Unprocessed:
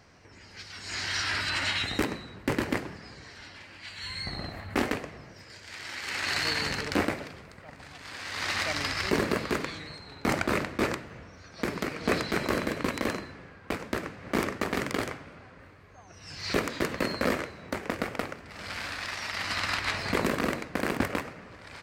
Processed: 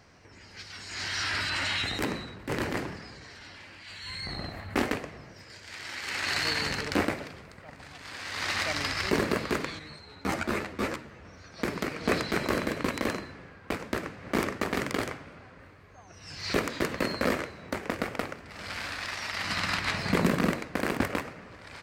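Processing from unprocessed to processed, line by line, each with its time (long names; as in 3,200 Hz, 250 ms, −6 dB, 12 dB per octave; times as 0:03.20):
0:00.76–0:04.36: transient designer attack −10 dB, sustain +4 dB
0:09.79–0:11.25: string-ensemble chorus
0:19.44–0:20.53: parametric band 170 Hz +9.5 dB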